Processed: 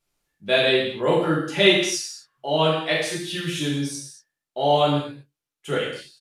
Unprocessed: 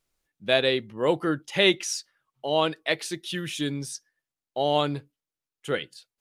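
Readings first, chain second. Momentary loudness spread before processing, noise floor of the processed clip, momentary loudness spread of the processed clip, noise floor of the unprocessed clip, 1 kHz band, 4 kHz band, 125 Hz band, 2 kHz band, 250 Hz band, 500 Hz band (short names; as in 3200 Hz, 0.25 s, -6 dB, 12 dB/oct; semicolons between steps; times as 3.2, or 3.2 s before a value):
16 LU, under -85 dBFS, 17 LU, under -85 dBFS, +5.0 dB, +4.5 dB, +6.5 dB, +4.5 dB, +4.5 dB, +4.5 dB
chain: non-linear reverb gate 0.27 s falling, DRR -6.5 dB; downsampling 32000 Hz; gain -3 dB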